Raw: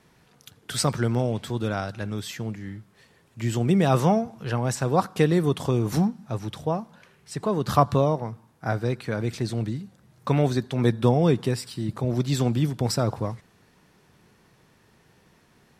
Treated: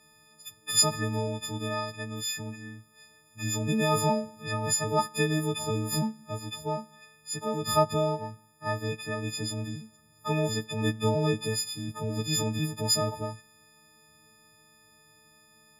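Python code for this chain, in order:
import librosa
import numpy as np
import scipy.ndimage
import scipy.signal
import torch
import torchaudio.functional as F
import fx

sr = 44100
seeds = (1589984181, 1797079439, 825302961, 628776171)

y = fx.freq_snap(x, sr, grid_st=6)
y = y * librosa.db_to_amplitude(-7.0)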